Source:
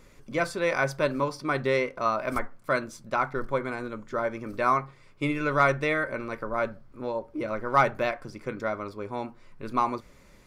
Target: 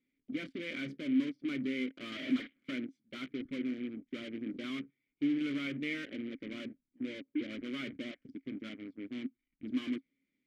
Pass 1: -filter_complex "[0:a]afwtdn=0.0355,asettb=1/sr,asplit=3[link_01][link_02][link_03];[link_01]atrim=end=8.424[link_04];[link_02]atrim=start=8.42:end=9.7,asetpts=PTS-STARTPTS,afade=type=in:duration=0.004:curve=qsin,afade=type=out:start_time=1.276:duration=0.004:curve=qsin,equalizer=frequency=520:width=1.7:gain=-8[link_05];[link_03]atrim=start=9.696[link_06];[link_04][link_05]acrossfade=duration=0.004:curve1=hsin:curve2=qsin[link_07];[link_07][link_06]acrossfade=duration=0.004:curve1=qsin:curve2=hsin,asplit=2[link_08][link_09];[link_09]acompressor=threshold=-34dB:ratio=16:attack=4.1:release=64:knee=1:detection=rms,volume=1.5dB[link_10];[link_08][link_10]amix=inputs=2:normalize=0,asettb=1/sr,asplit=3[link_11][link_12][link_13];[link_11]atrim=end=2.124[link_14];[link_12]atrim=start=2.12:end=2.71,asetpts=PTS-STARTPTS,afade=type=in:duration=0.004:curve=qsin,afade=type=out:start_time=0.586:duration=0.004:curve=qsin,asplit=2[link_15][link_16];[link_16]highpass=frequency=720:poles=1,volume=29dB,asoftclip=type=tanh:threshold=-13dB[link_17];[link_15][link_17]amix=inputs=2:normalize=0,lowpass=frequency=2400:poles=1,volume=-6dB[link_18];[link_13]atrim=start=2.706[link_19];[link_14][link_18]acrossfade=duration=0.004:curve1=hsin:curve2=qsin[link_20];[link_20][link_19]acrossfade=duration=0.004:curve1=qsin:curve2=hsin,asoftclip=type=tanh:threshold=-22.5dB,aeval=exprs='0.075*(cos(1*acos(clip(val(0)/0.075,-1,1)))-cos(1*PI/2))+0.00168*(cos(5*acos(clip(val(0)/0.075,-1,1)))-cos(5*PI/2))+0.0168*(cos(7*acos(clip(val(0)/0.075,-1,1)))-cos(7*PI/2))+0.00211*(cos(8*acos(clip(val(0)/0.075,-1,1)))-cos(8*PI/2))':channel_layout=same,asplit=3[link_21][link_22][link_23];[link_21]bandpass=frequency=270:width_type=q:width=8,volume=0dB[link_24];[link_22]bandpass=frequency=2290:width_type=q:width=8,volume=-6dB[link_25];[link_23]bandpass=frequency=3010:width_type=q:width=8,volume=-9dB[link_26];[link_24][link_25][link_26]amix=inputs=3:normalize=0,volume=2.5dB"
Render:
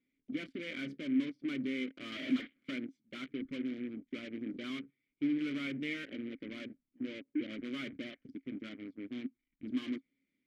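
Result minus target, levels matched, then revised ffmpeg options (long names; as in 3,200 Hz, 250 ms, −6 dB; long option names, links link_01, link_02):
downward compressor: peak gain reduction +10 dB
-filter_complex "[0:a]afwtdn=0.0355,asettb=1/sr,asplit=3[link_01][link_02][link_03];[link_01]atrim=end=8.424[link_04];[link_02]atrim=start=8.42:end=9.7,asetpts=PTS-STARTPTS,afade=type=in:duration=0.004:curve=qsin,afade=type=out:start_time=1.276:duration=0.004:curve=qsin,equalizer=frequency=520:width=1.7:gain=-8[link_05];[link_03]atrim=start=9.696[link_06];[link_04][link_05]acrossfade=duration=0.004:curve1=hsin:curve2=qsin[link_07];[link_07][link_06]acrossfade=duration=0.004:curve1=qsin:curve2=hsin,asplit=2[link_08][link_09];[link_09]acompressor=threshold=-23.5dB:ratio=16:attack=4.1:release=64:knee=1:detection=rms,volume=1.5dB[link_10];[link_08][link_10]amix=inputs=2:normalize=0,asettb=1/sr,asplit=3[link_11][link_12][link_13];[link_11]atrim=end=2.124[link_14];[link_12]atrim=start=2.12:end=2.71,asetpts=PTS-STARTPTS,afade=type=in:duration=0.004:curve=qsin,afade=type=out:start_time=0.586:duration=0.004:curve=qsin,asplit=2[link_15][link_16];[link_16]highpass=frequency=720:poles=1,volume=29dB,asoftclip=type=tanh:threshold=-13dB[link_17];[link_15][link_17]amix=inputs=2:normalize=0,lowpass=frequency=2400:poles=1,volume=-6dB[link_18];[link_13]atrim=start=2.706[link_19];[link_14][link_18]acrossfade=duration=0.004:curve1=hsin:curve2=qsin[link_20];[link_20][link_19]acrossfade=duration=0.004:curve1=qsin:curve2=hsin,asoftclip=type=tanh:threshold=-22.5dB,aeval=exprs='0.075*(cos(1*acos(clip(val(0)/0.075,-1,1)))-cos(1*PI/2))+0.00168*(cos(5*acos(clip(val(0)/0.075,-1,1)))-cos(5*PI/2))+0.0168*(cos(7*acos(clip(val(0)/0.075,-1,1)))-cos(7*PI/2))+0.00211*(cos(8*acos(clip(val(0)/0.075,-1,1)))-cos(8*PI/2))':channel_layout=same,asplit=3[link_21][link_22][link_23];[link_21]bandpass=frequency=270:width_type=q:width=8,volume=0dB[link_24];[link_22]bandpass=frequency=2290:width_type=q:width=8,volume=-6dB[link_25];[link_23]bandpass=frequency=3010:width_type=q:width=8,volume=-9dB[link_26];[link_24][link_25][link_26]amix=inputs=3:normalize=0,volume=2.5dB"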